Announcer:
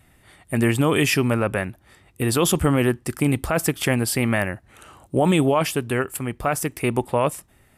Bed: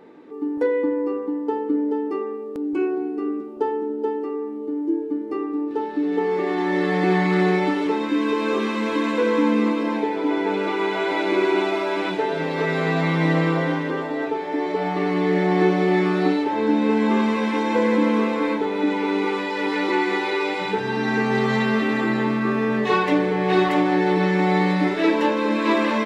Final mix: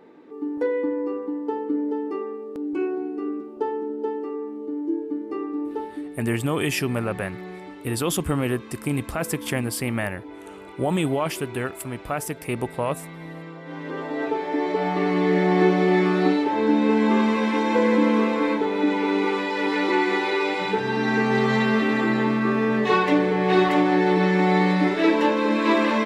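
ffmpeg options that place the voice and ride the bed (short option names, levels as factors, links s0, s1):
-filter_complex "[0:a]adelay=5650,volume=0.562[s0];[1:a]volume=5.96,afade=t=out:st=5.68:d=0.49:silence=0.16788,afade=t=in:st=13.64:d=0.68:silence=0.11885[s1];[s0][s1]amix=inputs=2:normalize=0"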